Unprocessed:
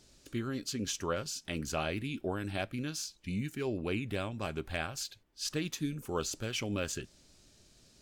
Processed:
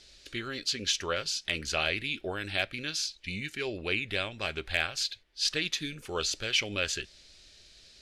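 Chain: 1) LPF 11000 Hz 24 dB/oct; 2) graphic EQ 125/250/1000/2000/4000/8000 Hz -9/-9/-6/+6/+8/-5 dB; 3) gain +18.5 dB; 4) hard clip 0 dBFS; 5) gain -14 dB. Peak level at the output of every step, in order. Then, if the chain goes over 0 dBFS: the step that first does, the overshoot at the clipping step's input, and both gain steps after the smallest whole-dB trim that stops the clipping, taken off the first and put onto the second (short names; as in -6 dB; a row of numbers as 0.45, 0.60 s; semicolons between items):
-19.5, -15.0, +3.5, 0.0, -14.0 dBFS; step 3, 3.5 dB; step 3 +14.5 dB, step 5 -10 dB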